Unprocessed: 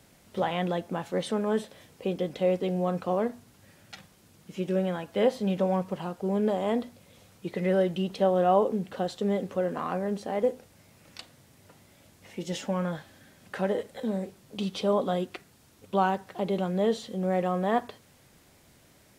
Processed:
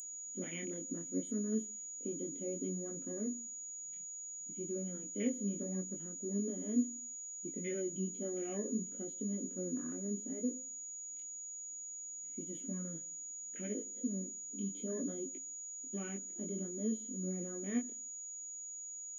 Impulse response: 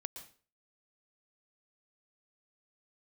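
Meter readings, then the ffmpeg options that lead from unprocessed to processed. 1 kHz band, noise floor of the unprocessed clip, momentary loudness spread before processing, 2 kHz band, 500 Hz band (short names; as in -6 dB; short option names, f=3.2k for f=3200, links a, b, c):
-31.5 dB, -59 dBFS, 16 LU, -16.0 dB, -16.5 dB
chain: -filter_complex "[0:a]afwtdn=0.0126,asplit=3[a][b][c];[a]bandpass=f=270:t=q:w=8,volume=0dB[d];[b]bandpass=f=2.29k:t=q:w=8,volume=-6dB[e];[c]bandpass=f=3.01k:t=q:w=8,volume=-9dB[f];[d][e][f]amix=inputs=3:normalize=0,bandreject=f=690:w=22,asplit=2[g][h];[1:a]atrim=start_sample=2205,lowpass=1.4k[i];[h][i]afir=irnorm=-1:irlink=0,volume=-12dB[j];[g][j]amix=inputs=2:normalize=0,flanger=delay=18.5:depth=6.6:speed=0.65,aeval=exprs='val(0)+0.002*sin(2*PI*6800*n/s)':c=same,aexciter=amount=11.6:drive=8.7:freq=8.7k,volume=5.5dB"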